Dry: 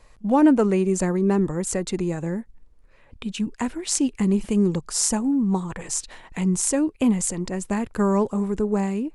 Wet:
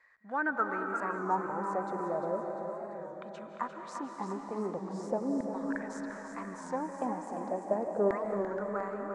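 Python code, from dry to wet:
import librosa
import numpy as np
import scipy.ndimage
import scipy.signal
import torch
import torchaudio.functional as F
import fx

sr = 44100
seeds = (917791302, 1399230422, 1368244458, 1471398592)

p1 = fx.high_shelf(x, sr, hz=7200.0, db=-7.0)
p2 = fx.filter_lfo_bandpass(p1, sr, shape='saw_down', hz=0.37, low_hz=490.0, high_hz=1900.0, q=6.4)
p3 = fx.peak_eq(p2, sr, hz=2800.0, db=-13.0, octaves=0.49)
p4 = p3 + fx.echo_feedback(p3, sr, ms=348, feedback_pct=55, wet_db=-8.0, dry=0)
p5 = fx.rev_freeverb(p4, sr, rt60_s=3.9, hf_ratio=0.95, predelay_ms=120, drr_db=4.5)
p6 = fx.record_warp(p5, sr, rpm=33.33, depth_cents=100.0)
y = p6 * librosa.db_to_amplitude(7.0)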